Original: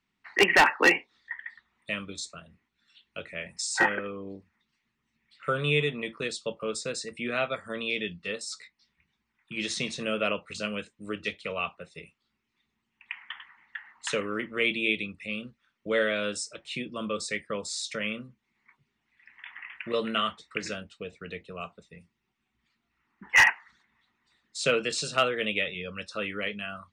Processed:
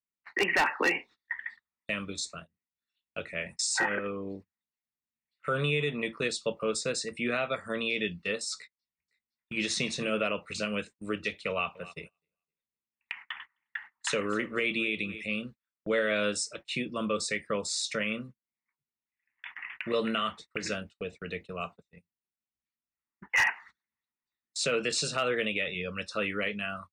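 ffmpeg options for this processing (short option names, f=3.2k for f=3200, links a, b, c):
-filter_complex "[0:a]asplit=2[a][b];[b]afade=t=in:st=8.57:d=0.01,afade=t=out:st=9.58:d=0.01,aecho=0:1:510|1020|1530:0.707946|0.106192|0.0159288[c];[a][c]amix=inputs=2:normalize=0,asettb=1/sr,asplit=3[d][e][f];[d]atrim=end=11.494[g];[e]atrim=start=11.49:end=15.25,asetpts=PTS-STARTPTS,afade=t=in:d=0.004:c=qsin,afade=t=out:st=3.756:d=0.004:c=qsin,aecho=1:1:259|518|777:0.112|0.0359|0.0115,atrim=end_sample=165816[h];[f]atrim=start=15.246[i];[g][h]acrossfade=d=0.004:c1=hsin:c2=qsin[j];[j][i]acrossfade=d=0.004:c1=qsin:c2=hsin,bandreject=f=3.2k:w=13,agate=range=-27dB:threshold=-46dB:ratio=16:detection=peak,alimiter=limit=-20.5dB:level=0:latency=1:release=89,volume=2dB"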